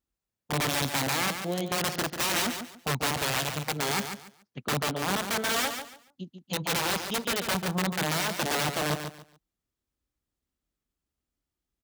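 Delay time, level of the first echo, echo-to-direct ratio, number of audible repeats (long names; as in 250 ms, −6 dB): 142 ms, −8.0 dB, −7.5 dB, 3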